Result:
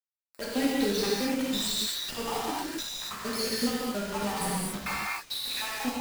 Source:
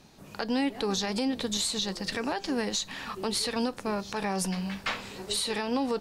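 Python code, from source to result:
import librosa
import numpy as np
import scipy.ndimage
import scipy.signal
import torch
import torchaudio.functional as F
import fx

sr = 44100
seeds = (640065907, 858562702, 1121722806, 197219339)

y = fx.spec_dropout(x, sr, seeds[0], share_pct=70)
y = fx.quant_dither(y, sr, seeds[1], bits=6, dither='none')
y = fx.rev_gated(y, sr, seeds[2], gate_ms=310, shape='flat', drr_db=-7.0)
y = y * librosa.db_to_amplitude(-3.0)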